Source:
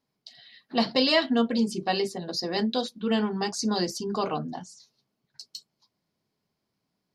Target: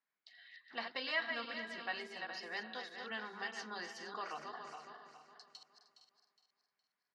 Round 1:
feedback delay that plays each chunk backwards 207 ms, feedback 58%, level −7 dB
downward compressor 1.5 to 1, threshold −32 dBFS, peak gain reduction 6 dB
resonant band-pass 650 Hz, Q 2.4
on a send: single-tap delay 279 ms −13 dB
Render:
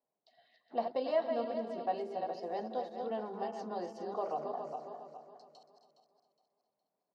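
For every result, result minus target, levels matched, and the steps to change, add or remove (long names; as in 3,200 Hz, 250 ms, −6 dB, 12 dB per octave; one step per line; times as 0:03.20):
2,000 Hz band −18.5 dB; echo 183 ms early
change: resonant band-pass 1,700 Hz, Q 2.4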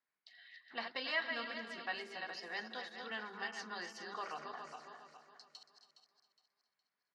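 echo 183 ms early
change: single-tap delay 462 ms −13 dB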